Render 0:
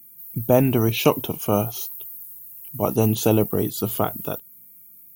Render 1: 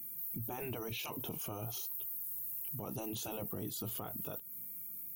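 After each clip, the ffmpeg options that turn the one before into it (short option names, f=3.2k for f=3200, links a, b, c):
-af "afftfilt=real='re*lt(hypot(re,im),0.631)':imag='im*lt(hypot(re,im),0.631)':win_size=1024:overlap=0.75,acompressor=threshold=-34dB:ratio=5,alimiter=level_in=10dB:limit=-24dB:level=0:latency=1:release=18,volume=-10dB,volume=2dB"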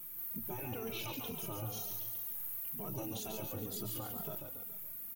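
-filter_complex "[0:a]asplit=2[a][b];[b]acrusher=bits=6:dc=4:mix=0:aa=0.000001,volume=-9.5dB[c];[a][c]amix=inputs=2:normalize=0,aecho=1:1:140|280|420|560|700|840:0.562|0.281|0.141|0.0703|0.0351|0.0176,asplit=2[d][e];[e]adelay=2.6,afreqshift=-2.1[f];[d][f]amix=inputs=2:normalize=1"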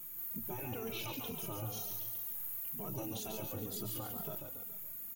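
-af "aeval=exprs='val(0)+0.000398*sin(2*PI*6800*n/s)':c=same"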